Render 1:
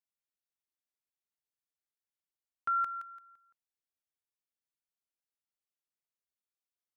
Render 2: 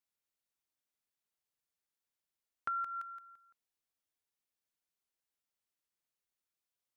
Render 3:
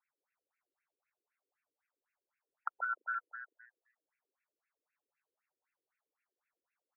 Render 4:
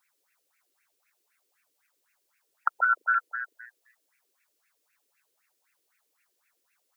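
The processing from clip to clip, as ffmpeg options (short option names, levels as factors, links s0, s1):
-af "acompressor=threshold=0.0141:ratio=6,volume=1.26"
-filter_complex "[0:a]acompressor=threshold=0.00631:ratio=6,asplit=6[s0][s1][s2][s3][s4][s5];[s1]adelay=129,afreqshift=120,volume=0.596[s6];[s2]adelay=258,afreqshift=240,volume=0.214[s7];[s3]adelay=387,afreqshift=360,volume=0.0776[s8];[s4]adelay=516,afreqshift=480,volume=0.0279[s9];[s5]adelay=645,afreqshift=600,volume=0.01[s10];[s0][s6][s7][s8][s9][s10]amix=inputs=6:normalize=0,afftfilt=real='re*between(b*sr/1024,360*pow(2000/360,0.5+0.5*sin(2*PI*3.9*pts/sr))/1.41,360*pow(2000/360,0.5+0.5*sin(2*PI*3.9*pts/sr))*1.41)':imag='im*between(b*sr/1024,360*pow(2000/360,0.5+0.5*sin(2*PI*3.9*pts/sr))/1.41,360*pow(2000/360,0.5+0.5*sin(2*PI*3.9*pts/sr))*1.41)':win_size=1024:overlap=0.75,volume=3.98"
-af "highshelf=f=2100:g=11.5,volume=2.82"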